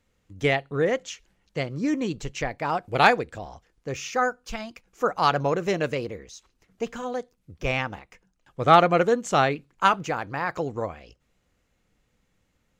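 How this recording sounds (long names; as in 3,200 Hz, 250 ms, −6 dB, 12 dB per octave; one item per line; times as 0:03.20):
background noise floor −71 dBFS
spectral slope −3.5 dB per octave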